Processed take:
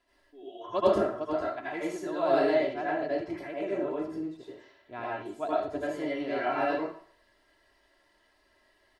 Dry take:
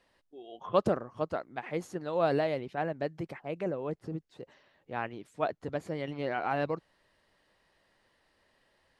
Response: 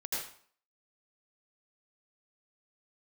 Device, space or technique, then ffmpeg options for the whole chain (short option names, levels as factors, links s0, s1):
microphone above a desk: -filter_complex "[0:a]aecho=1:1:3:0.73[s0];[1:a]atrim=start_sample=2205[s1];[s0][s1]afir=irnorm=-1:irlink=0,asettb=1/sr,asplit=3[s2][s3][s4];[s2]atrim=end=2.544[s5];[s3]atrim=start=2.54:end=3.38,asetpts=PTS-STARTPTS,afade=t=in:d=0.004:c=qsin,afade=t=out:st=0.836:d=0.004:c=qsin,lowpass=8100[s6];[s4]atrim=start=3.376[s7];[s5][s6]acrossfade=d=0.004:c1=hsin:c2=qsin[s8];[s8][s7]acrossfade=d=0.004:c1=qsin:c2=hsin,asettb=1/sr,asplit=3[s9][s10][s11];[s9]atrim=end=5.024[s12];[s10]atrim=start=5.02:end=5.83,asetpts=PTS-STARTPTS,afade=t=in:d=0.004:c=qsin,afade=t=out:st=0.806:d=0.004:c=qsin,equalizer=f=1900:t=o:w=1.1:g=-5.5[s13];[s11]atrim=start=5.826[s14];[s12][s13]acrossfade=d=0.004:c1=hsin:c2=qsin[s15];[s15][s14]acrossfade=d=0.004:c1=qsin:c2=hsin,volume=0.841"